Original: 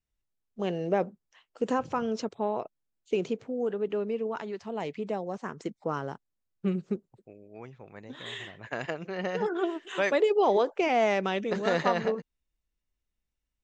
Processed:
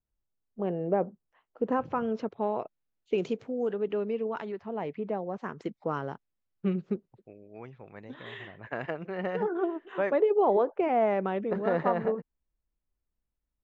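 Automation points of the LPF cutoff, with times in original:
1200 Hz
from 1.72 s 2100 Hz
from 2.38 s 3200 Hz
from 3.18 s 6200 Hz
from 3.73 s 3800 Hz
from 4.52 s 1900 Hz
from 5.38 s 3500 Hz
from 8.14 s 2100 Hz
from 9.43 s 1300 Hz

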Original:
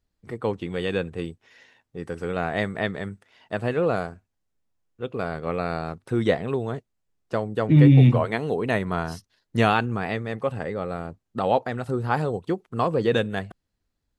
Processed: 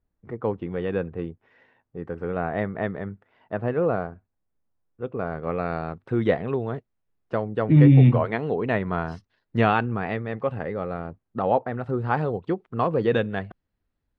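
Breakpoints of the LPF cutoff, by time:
5.2 s 1500 Hz
5.75 s 2500 Hz
11 s 2500 Hz
11.64 s 1500 Hz
12.02 s 2700 Hz

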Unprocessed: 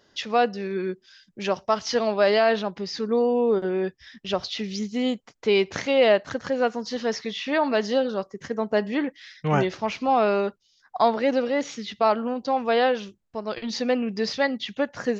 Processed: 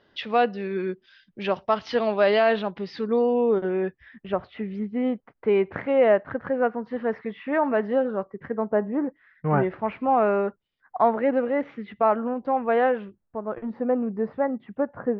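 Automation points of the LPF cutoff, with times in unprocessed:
LPF 24 dB/oct
3.22 s 3600 Hz
4.43 s 1900 Hz
8.56 s 1900 Hz
9 s 1200 Hz
9.78 s 2000 Hz
13.02 s 2000 Hz
13.69 s 1300 Hz

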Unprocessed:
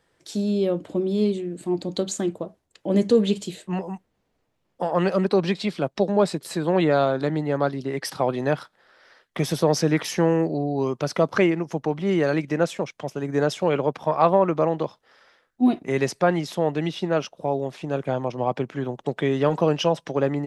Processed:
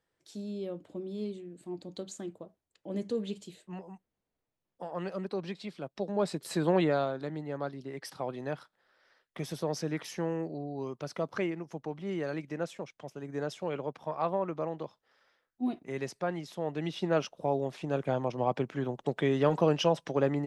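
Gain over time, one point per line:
5.9 s -15 dB
6.63 s -3 dB
7.19 s -13 dB
16.54 s -13 dB
17.09 s -5 dB

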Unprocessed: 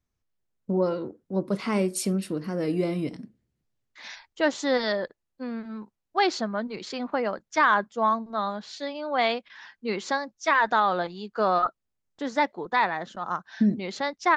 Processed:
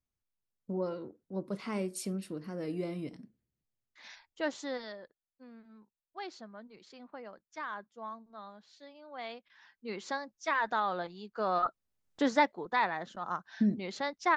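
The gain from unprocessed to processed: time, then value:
4.57 s -10 dB
4.97 s -19.5 dB
9.12 s -19.5 dB
10.06 s -9 dB
11.43 s -9 dB
12.22 s +3.5 dB
12.54 s -6 dB

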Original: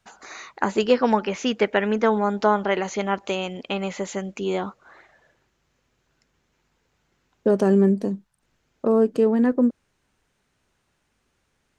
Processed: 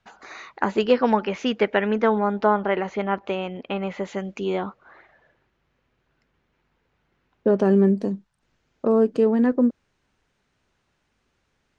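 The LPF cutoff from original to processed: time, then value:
1.86 s 4100 Hz
2.59 s 2400 Hz
3.85 s 2400 Hz
4.39 s 5200 Hz
4.57 s 3200 Hz
7.49 s 3200 Hz
7.96 s 6100 Hz

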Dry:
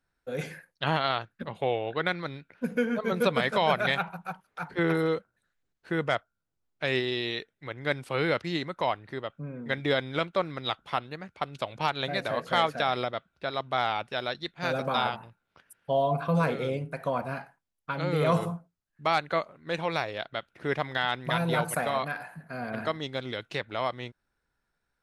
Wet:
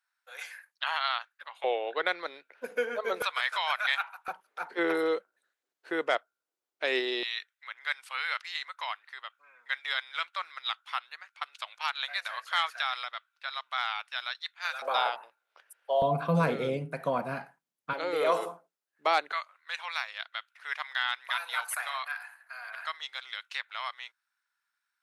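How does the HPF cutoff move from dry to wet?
HPF 24 dB/oct
960 Hz
from 1.64 s 420 Hz
from 3.22 s 1000 Hz
from 4.28 s 340 Hz
from 7.23 s 1100 Hz
from 14.82 s 500 Hz
from 16.02 s 140 Hz
from 17.93 s 360 Hz
from 19.32 s 1100 Hz

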